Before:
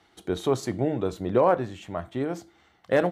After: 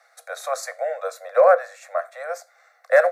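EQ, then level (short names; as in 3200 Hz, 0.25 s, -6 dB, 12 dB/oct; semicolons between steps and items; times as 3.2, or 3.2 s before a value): Chebyshev high-pass 480 Hz, order 10; dynamic EQ 1600 Hz, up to +3 dB, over -43 dBFS, Q 1.5; fixed phaser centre 620 Hz, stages 8; +9.0 dB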